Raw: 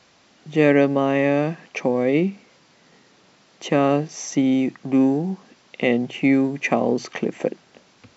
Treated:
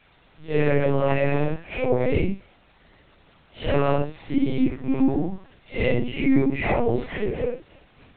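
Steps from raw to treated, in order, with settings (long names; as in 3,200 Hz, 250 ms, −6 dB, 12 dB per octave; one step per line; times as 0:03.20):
random phases in long frames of 200 ms
brickwall limiter −11.5 dBFS, peak gain reduction 8.5 dB
high-pass filter 43 Hz 12 dB per octave
linear-prediction vocoder at 8 kHz pitch kept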